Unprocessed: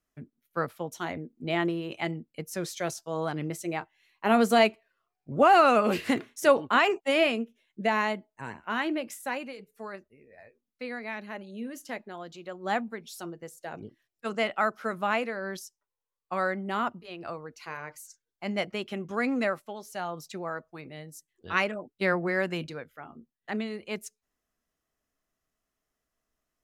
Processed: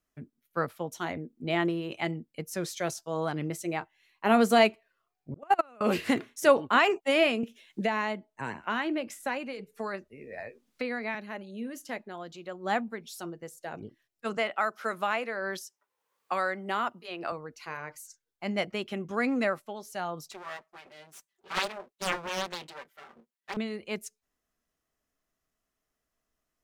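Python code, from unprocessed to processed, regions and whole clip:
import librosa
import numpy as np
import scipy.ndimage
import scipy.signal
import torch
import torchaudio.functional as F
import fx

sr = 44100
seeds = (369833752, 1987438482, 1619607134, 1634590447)

y = fx.chain(x, sr, fx.level_steps(step_db=17),
    fx.peak_eq(hz=4400.0, db=-6.0, octaves=0.83),
    fx.upward_expand(threshold_db=-29.0, expansion=2.5), at=(5.34, 5.81))
y = fx.chain(y, sr, fx.high_shelf(hz=12000.0, db=-10.0),
    fx.band_squash(depth_pct=70), at=(7.43, 11.15))
y = fx.chain(y, sr, fx.highpass(hz=450.0, slope=6),
    fx.band_squash(depth_pct=70), at=(14.37, 17.32))
y = fx.chain(y, sr, fx.lower_of_two(delay_ms=5.1),
    fx.highpass(hz=580.0, slope=6),
    fx.doppler_dist(depth_ms=0.95), at=(20.31, 23.57))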